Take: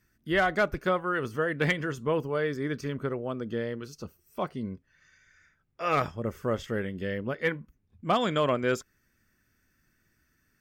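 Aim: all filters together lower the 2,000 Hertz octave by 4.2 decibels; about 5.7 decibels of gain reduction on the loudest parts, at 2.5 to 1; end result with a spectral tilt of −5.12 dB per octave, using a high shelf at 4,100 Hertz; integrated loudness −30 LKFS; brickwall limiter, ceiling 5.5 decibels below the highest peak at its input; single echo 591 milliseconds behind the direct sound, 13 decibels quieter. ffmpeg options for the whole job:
ffmpeg -i in.wav -af "equalizer=frequency=2000:width_type=o:gain=-7.5,highshelf=frequency=4100:gain=9,acompressor=threshold=-30dB:ratio=2.5,alimiter=level_in=1dB:limit=-24dB:level=0:latency=1,volume=-1dB,aecho=1:1:591:0.224,volume=6dB" out.wav

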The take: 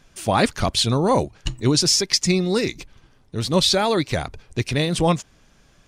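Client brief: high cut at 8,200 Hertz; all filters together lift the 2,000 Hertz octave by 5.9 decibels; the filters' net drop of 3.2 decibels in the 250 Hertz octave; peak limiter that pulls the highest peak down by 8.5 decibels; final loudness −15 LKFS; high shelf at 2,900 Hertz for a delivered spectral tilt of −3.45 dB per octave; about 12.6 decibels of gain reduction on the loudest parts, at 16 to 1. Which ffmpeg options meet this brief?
ffmpeg -i in.wav -af "lowpass=8200,equalizer=frequency=250:width_type=o:gain=-5,equalizer=frequency=2000:width_type=o:gain=4.5,highshelf=frequency=2900:gain=7,acompressor=threshold=-22dB:ratio=16,volume=13.5dB,alimiter=limit=-4dB:level=0:latency=1" out.wav

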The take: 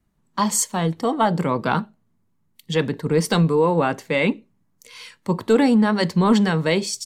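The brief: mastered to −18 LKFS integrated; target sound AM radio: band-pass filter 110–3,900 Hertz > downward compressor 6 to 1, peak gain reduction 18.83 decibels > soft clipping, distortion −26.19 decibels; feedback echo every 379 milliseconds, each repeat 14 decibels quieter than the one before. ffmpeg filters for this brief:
ffmpeg -i in.wav -af "highpass=110,lowpass=3900,aecho=1:1:379|758:0.2|0.0399,acompressor=threshold=-32dB:ratio=6,asoftclip=threshold=-21dB,volume=18dB" out.wav

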